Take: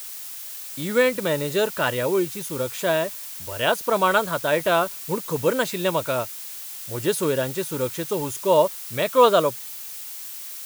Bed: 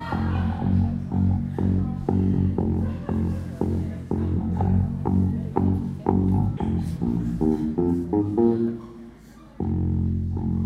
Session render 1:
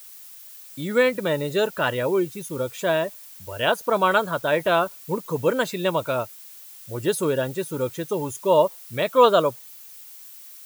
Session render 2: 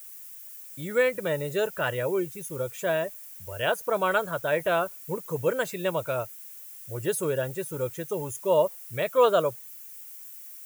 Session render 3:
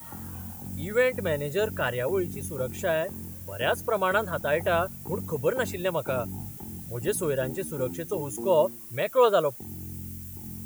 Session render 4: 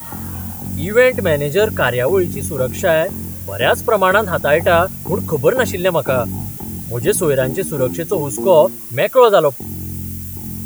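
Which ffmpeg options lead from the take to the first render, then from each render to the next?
-af "afftdn=nr=10:nf=-36"
-af "equalizer=f=250:t=o:w=1:g=-11,equalizer=f=1k:t=o:w=1:g=-7,equalizer=f=4k:t=o:w=1:g=-10"
-filter_complex "[1:a]volume=-16.5dB[a];[0:a][a]amix=inputs=2:normalize=0"
-af "volume=12dB,alimiter=limit=-1dB:level=0:latency=1"

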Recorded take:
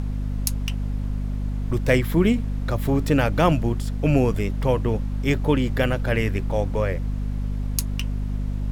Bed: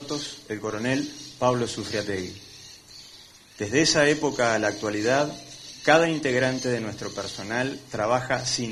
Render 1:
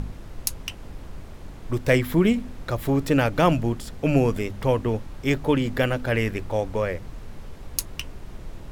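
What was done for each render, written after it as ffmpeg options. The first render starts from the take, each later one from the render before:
-af "bandreject=f=50:t=h:w=4,bandreject=f=100:t=h:w=4,bandreject=f=150:t=h:w=4,bandreject=f=200:t=h:w=4,bandreject=f=250:t=h:w=4"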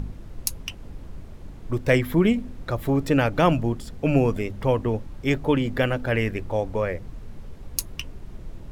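-af "afftdn=nr=6:nf=-41"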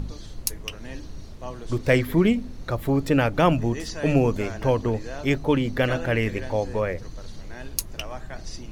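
-filter_complex "[1:a]volume=-15dB[a];[0:a][a]amix=inputs=2:normalize=0"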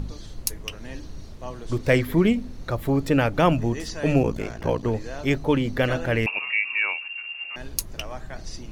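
-filter_complex "[0:a]asettb=1/sr,asplit=3[a][b][c];[a]atrim=end=4.224[d];[b]atrim=start=4.22:end=4.84,asetpts=PTS-STARTPTS,afade=t=in:d=0.004:c=qsin,afade=t=out:st=0.616:d=0.004:c=qsin,aeval=exprs='val(0)*sin(2*PI*29*n/s)':c=same[e];[c]atrim=start=4.836[f];[d][e]acrossfade=d=0.004:c1=hsin:c2=qsin[g];[g][f]acrossfade=d=0.004:c1=qsin:c2=hsin,asettb=1/sr,asplit=3[h][i][j];[h]atrim=end=6.264[k];[i]atrim=start=6.26:end=7.56,asetpts=PTS-STARTPTS,afade=t=in:d=0.004:c=qsin,afade=t=out:st=1.296:d=0.004:c=qsin,lowpass=f=2.4k:t=q:w=0.5098,lowpass=f=2.4k:t=q:w=0.6013,lowpass=f=2.4k:t=q:w=0.9,lowpass=f=2.4k:t=q:w=2.563,afreqshift=-2800[l];[j]atrim=start=7.556[m];[k][l]acrossfade=d=0.004:c1=hsin:c2=qsin[n];[n][m]acrossfade=d=0.004:c1=qsin:c2=hsin"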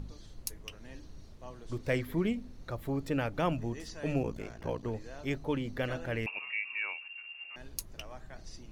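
-af "volume=-11.5dB"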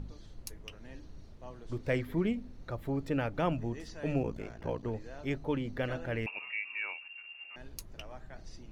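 -af "highshelf=f=4.6k:g=-8.5,bandreject=f=1.1k:w=25"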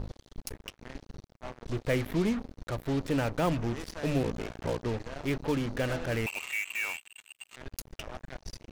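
-filter_complex "[0:a]asplit=2[a][b];[b]volume=32.5dB,asoftclip=hard,volume=-32.5dB,volume=-3dB[c];[a][c]amix=inputs=2:normalize=0,acrusher=bits=5:mix=0:aa=0.5"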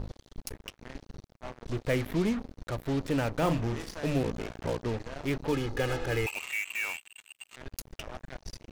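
-filter_complex "[0:a]asettb=1/sr,asplit=3[a][b][c];[a]atrim=end=3.384[d];[b]atrim=start=3.38:end=4,asetpts=PTS-STARTPTS,afade=t=in:d=0.004:c=qsin,afade=t=out:st=0.616:d=0.004:c=qsin,asplit=2[e][f];[f]adelay=36,volume=-7.5dB[g];[e][g]amix=inputs=2:normalize=0,atrim=end_sample=27342[h];[c]atrim=start=3.996[i];[d][h]acrossfade=d=0.004:c1=hsin:c2=qsin[j];[j][i]acrossfade=d=0.004:c1=qsin:c2=hsin,asettb=1/sr,asplit=3[k][l][m];[k]atrim=end=5.524[n];[l]atrim=start=5.52:end=6.34,asetpts=PTS-STARTPTS,afade=t=in:d=0.004:c=qsin,afade=t=out:st=0.816:d=0.004:c=qsin,aecho=1:1:2.4:0.65,atrim=end_sample=36162[o];[m]atrim=start=6.336[p];[n][o]acrossfade=d=0.004:c1=hsin:c2=qsin[q];[q][p]acrossfade=d=0.004:c1=qsin:c2=hsin"

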